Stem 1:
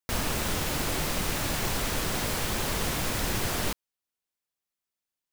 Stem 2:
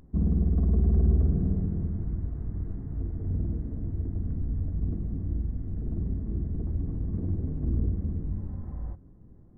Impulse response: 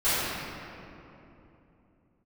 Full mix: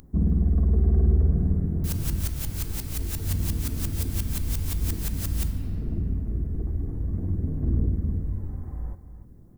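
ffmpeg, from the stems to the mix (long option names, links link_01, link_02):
-filter_complex "[0:a]aeval=exprs='val(0)*pow(10,-30*if(lt(mod(-5.7*n/s,1),2*abs(-5.7)/1000),1-mod(-5.7*n/s,1)/(2*abs(-5.7)/1000),(mod(-5.7*n/s,1)-2*abs(-5.7)/1000)/(1-2*abs(-5.7)/1000))/20)':channel_layout=same,adelay=1750,volume=-11dB,asplit=2[link_01][link_02];[link_02]volume=-20.5dB[link_03];[1:a]aphaser=in_gain=1:out_gain=1:delay=2.6:decay=0.23:speed=0.52:type=sinusoidal,volume=0.5dB,asplit=2[link_04][link_05];[link_05]volume=-12dB[link_06];[2:a]atrim=start_sample=2205[link_07];[link_03][link_07]afir=irnorm=-1:irlink=0[link_08];[link_06]aecho=0:1:300:1[link_09];[link_01][link_04][link_08][link_09]amix=inputs=4:normalize=0,crystalizer=i=4:c=0"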